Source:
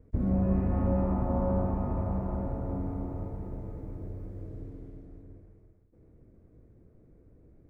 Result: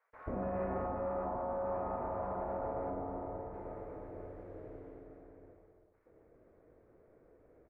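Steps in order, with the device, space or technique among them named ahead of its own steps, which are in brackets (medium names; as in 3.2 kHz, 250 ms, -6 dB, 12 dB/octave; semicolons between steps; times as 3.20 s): DJ mixer with the lows and highs turned down (three-band isolator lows -24 dB, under 500 Hz, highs -23 dB, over 2.1 kHz; peak limiter -38 dBFS, peak gain reduction 10.5 dB); 2.90–3.54 s: distance through air 480 m; bands offset in time highs, lows 130 ms, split 990 Hz; trim +10 dB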